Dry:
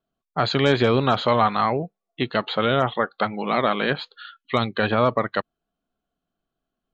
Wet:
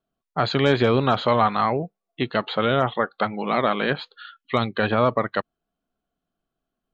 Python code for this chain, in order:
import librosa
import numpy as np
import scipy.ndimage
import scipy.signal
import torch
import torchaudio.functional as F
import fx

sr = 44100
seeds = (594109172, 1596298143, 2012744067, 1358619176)

y = fx.high_shelf(x, sr, hz=4800.0, db=-5.5)